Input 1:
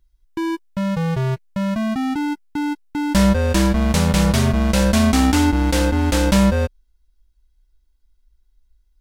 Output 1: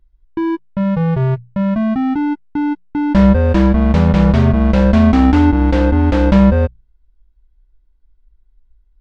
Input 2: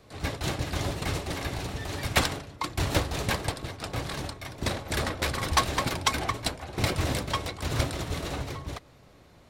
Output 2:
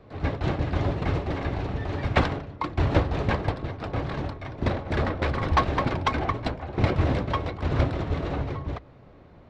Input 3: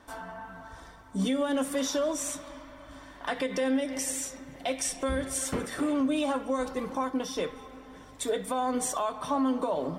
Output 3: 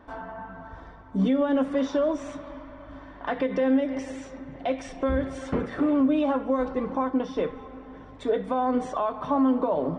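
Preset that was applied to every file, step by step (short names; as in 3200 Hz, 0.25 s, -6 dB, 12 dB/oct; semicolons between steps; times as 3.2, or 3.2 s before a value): tape spacing loss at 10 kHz 37 dB; notches 60/120/180 Hz; gain +6.5 dB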